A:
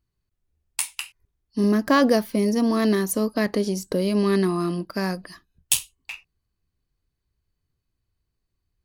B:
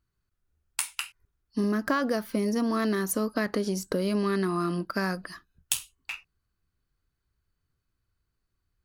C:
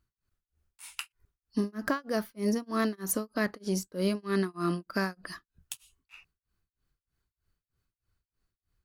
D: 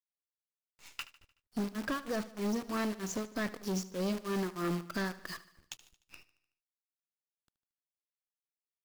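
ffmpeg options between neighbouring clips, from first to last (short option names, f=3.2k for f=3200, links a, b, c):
-af "equalizer=f=1.4k:t=o:w=0.52:g=9.5,acompressor=threshold=-22dB:ratio=5,volume=-1.5dB"
-filter_complex "[0:a]asplit=2[a][b];[b]alimiter=limit=-20dB:level=0:latency=1:release=68,volume=1dB[c];[a][c]amix=inputs=2:normalize=0,tremolo=f=3.2:d=0.99,volume=-5dB"
-af "aresample=16000,asoftclip=type=tanh:threshold=-28.5dB,aresample=44100,acrusher=bits=8:dc=4:mix=0:aa=0.000001,aecho=1:1:75|150|225|300|375:0.141|0.0763|0.0412|0.0222|0.012"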